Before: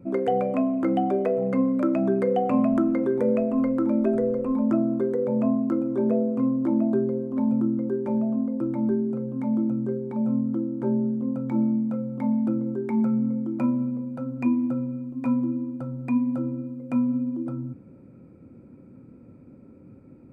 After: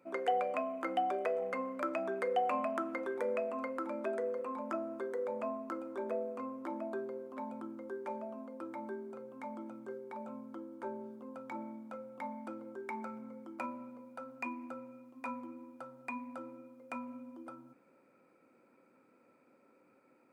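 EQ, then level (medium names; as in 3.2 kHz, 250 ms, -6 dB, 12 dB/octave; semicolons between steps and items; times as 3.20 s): high-pass 900 Hz 12 dB/octave; 0.0 dB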